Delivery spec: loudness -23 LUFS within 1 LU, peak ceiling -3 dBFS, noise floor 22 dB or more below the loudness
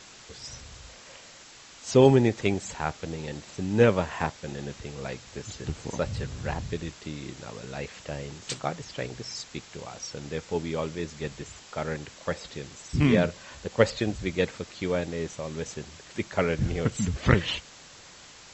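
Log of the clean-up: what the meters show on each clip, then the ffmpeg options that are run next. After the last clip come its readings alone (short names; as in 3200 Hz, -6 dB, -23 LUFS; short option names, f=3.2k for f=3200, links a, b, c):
noise floor -49 dBFS; noise floor target -51 dBFS; loudness -29.0 LUFS; peak -5.0 dBFS; loudness target -23.0 LUFS
-> -af "afftdn=nr=6:nf=-49"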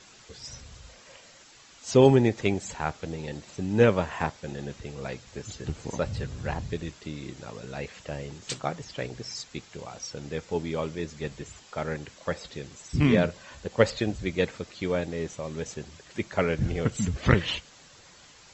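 noise floor -53 dBFS; loudness -29.0 LUFS; peak -5.0 dBFS; loudness target -23.0 LUFS
-> -af "volume=6dB,alimiter=limit=-3dB:level=0:latency=1"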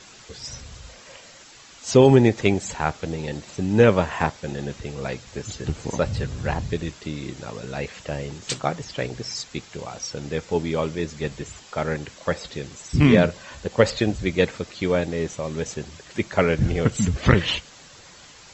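loudness -23.5 LUFS; peak -3.0 dBFS; noise floor -47 dBFS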